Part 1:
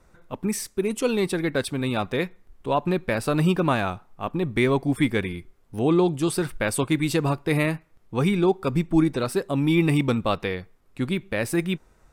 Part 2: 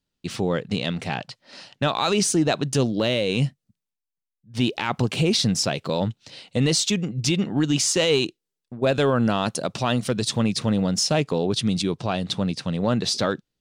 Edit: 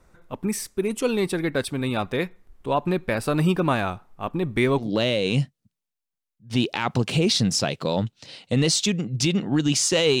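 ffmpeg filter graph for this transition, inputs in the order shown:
-filter_complex "[0:a]apad=whole_dur=10.2,atrim=end=10.2,atrim=end=4.91,asetpts=PTS-STARTPTS[s0];[1:a]atrim=start=2.81:end=8.24,asetpts=PTS-STARTPTS[s1];[s0][s1]acrossfade=d=0.14:c1=tri:c2=tri"

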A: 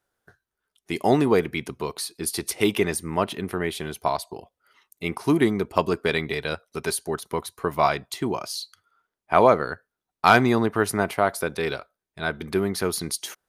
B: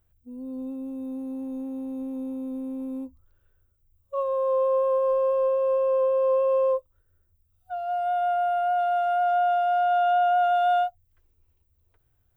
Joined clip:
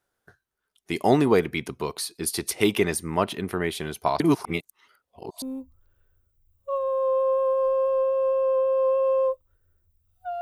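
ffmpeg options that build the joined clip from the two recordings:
-filter_complex "[0:a]apad=whole_dur=10.41,atrim=end=10.41,asplit=2[s0][s1];[s0]atrim=end=4.202[s2];[s1]atrim=start=4.198:end=5.422,asetpts=PTS-STARTPTS,areverse[s3];[1:a]atrim=start=2.868:end=7.86[s4];[s2][s3]acrossfade=d=0.004:c1=hsin:c2=hsin[s5];[s5][s4]acrossfade=d=0.004:c1=hsin:c2=hsin"

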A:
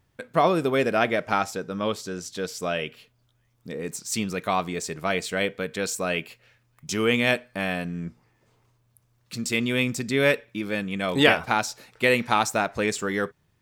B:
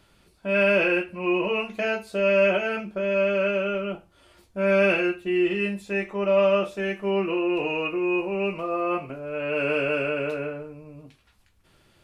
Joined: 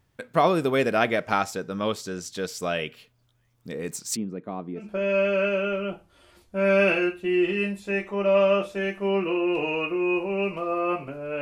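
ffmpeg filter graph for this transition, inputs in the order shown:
-filter_complex "[0:a]asplit=3[s0][s1][s2];[s0]afade=t=out:st=4.15:d=0.02[s3];[s1]bandpass=f=270:t=q:w=1.4:csg=0,afade=t=in:st=4.15:d=0.02,afade=t=out:st=4.91:d=0.02[s4];[s2]afade=t=in:st=4.91:d=0.02[s5];[s3][s4][s5]amix=inputs=3:normalize=0,apad=whole_dur=11.41,atrim=end=11.41,atrim=end=4.91,asetpts=PTS-STARTPTS[s6];[1:a]atrim=start=2.77:end=9.43,asetpts=PTS-STARTPTS[s7];[s6][s7]acrossfade=d=0.16:c1=tri:c2=tri"

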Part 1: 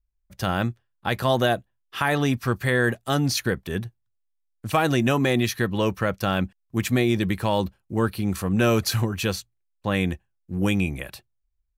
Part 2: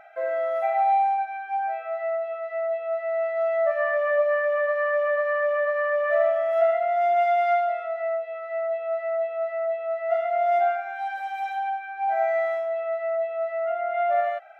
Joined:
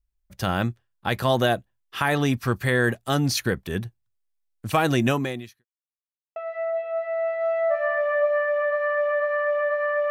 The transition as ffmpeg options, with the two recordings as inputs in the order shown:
-filter_complex "[0:a]apad=whole_dur=10.1,atrim=end=10.1,asplit=2[s0][s1];[s0]atrim=end=5.65,asetpts=PTS-STARTPTS,afade=t=out:st=5.09:d=0.56:c=qua[s2];[s1]atrim=start=5.65:end=6.36,asetpts=PTS-STARTPTS,volume=0[s3];[1:a]atrim=start=2.32:end=6.06,asetpts=PTS-STARTPTS,afade=t=in:d=0.004:c=hsin[s4];[s2][s3][s4]concat=n=3:v=0:a=1"

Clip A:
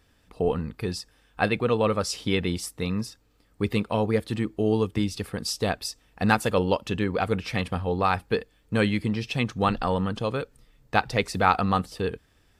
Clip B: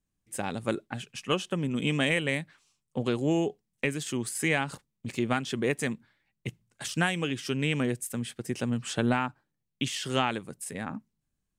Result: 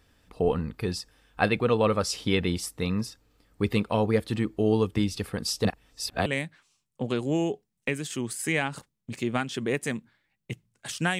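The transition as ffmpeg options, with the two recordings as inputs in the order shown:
-filter_complex "[0:a]apad=whole_dur=11.19,atrim=end=11.19,asplit=2[s0][s1];[s0]atrim=end=5.652[s2];[s1]atrim=start=5.648:end=6.262,asetpts=PTS-STARTPTS,areverse[s3];[1:a]atrim=start=2.218:end=7.15[s4];[s2][s3]acrossfade=d=0.004:c1=hsin:c2=hsin[s5];[s5][s4]acrossfade=d=0.004:c1=hsin:c2=hsin"

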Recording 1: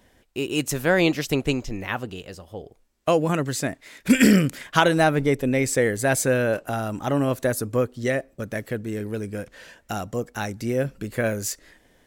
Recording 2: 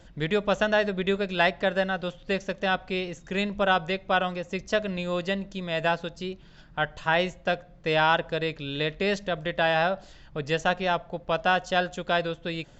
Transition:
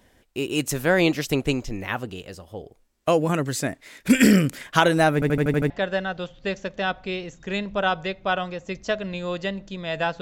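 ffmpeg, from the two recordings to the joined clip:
-filter_complex "[0:a]apad=whole_dur=10.21,atrim=end=10.21,asplit=7[s0][s1][s2][s3][s4][s5][s6];[s0]atrim=end=5.222[s7];[s1]atrim=start=5.138:end=5.222[s8];[s2]atrim=start=5.138:end=5.222[s9];[s3]atrim=start=5.138:end=5.222[s10];[s4]atrim=start=5.138:end=5.222[s11];[s5]atrim=start=5.138:end=5.222[s12];[s6]atrim=start=5.138:end=5.222[s13];[1:a]atrim=start=1.538:end=6.05[s14];[s7][s8]acrossfade=d=0.004:c1=hsin:c2=hsin[s15];[s15][s9]acrossfade=d=0.004:c1=hsin:c2=hsin[s16];[s16][s10]acrossfade=d=0.004:c1=hsin:c2=hsin[s17];[s17][s11]acrossfade=d=0.004:c1=hsin:c2=hsin[s18];[s18][s12]acrossfade=d=0.004:c1=hsin:c2=hsin[s19];[s19][s13]acrossfade=d=0.004:c1=hsin:c2=hsin[s20];[s20][s14]acrossfade=d=0.004:c1=hsin:c2=hsin"

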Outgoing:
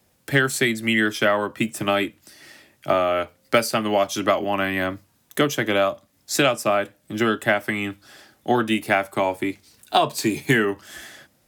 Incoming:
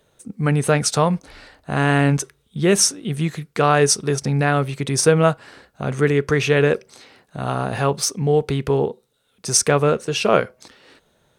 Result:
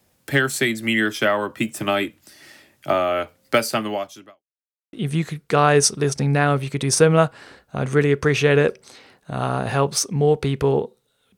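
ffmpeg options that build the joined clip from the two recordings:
-filter_complex "[0:a]apad=whole_dur=11.37,atrim=end=11.37,asplit=2[s0][s1];[s0]atrim=end=4.43,asetpts=PTS-STARTPTS,afade=t=out:st=3.78:d=0.65:c=qua[s2];[s1]atrim=start=4.43:end=4.93,asetpts=PTS-STARTPTS,volume=0[s3];[1:a]atrim=start=2.99:end=9.43,asetpts=PTS-STARTPTS,afade=t=in:d=0.004:c=hsin[s4];[s2][s3][s4]concat=n=3:v=0:a=1"

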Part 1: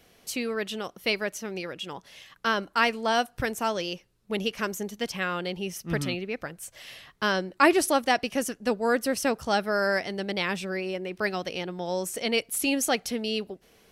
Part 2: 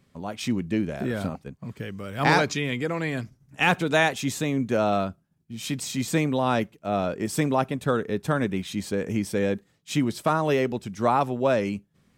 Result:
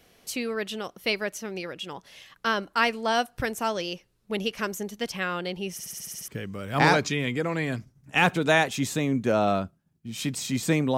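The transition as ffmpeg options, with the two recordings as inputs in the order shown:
-filter_complex "[0:a]apad=whole_dur=10.97,atrim=end=10.97,asplit=8[s0][s1][s2][s3][s4][s5][s6][s7];[s0]atrim=end=5.792[s8];[s1]atrim=start=5.718:end=5.792[s9];[s2]atrim=start=5.718:end=5.792[s10];[s3]atrim=start=5.718:end=5.792[s11];[s4]atrim=start=5.718:end=5.792[s12];[s5]atrim=start=5.718:end=5.792[s13];[s6]atrim=start=5.718:end=5.792[s14];[s7]atrim=start=5.718:end=5.792[s15];[1:a]atrim=start=1.728:end=6.42[s16];[s8][s9]acrossfade=d=0.004:c1=hsin:c2=hsin[s17];[s17][s10]acrossfade=d=0.004:c1=hsin:c2=hsin[s18];[s18][s11]acrossfade=d=0.004:c1=hsin:c2=hsin[s19];[s19][s12]acrossfade=d=0.004:c1=hsin:c2=hsin[s20];[s20][s13]acrossfade=d=0.004:c1=hsin:c2=hsin[s21];[s21][s14]acrossfade=d=0.004:c1=hsin:c2=hsin[s22];[s22][s15]acrossfade=d=0.004:c1=hsin:c2=hsin[s23];[s23][s16]acrossfade=d=0.004:c1=hsin:c2=hsin"

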